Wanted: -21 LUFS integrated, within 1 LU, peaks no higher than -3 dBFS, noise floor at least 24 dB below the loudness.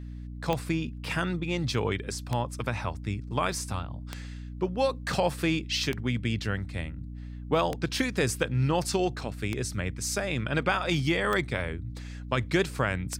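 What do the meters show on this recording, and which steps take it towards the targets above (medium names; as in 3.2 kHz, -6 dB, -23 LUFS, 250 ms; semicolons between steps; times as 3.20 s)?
clicks found 8; hum 60 Hz; highest harmonic 300 Hz; hum level -36 dBFS; loudness -29.5 LUFS; peak level -10.5 dBFS; loudness target -21.0 LUFS
-> de-click; hum notches 60/120/180/240/300 Hz; trim +8.5 dB; peak limiter -3 dBFS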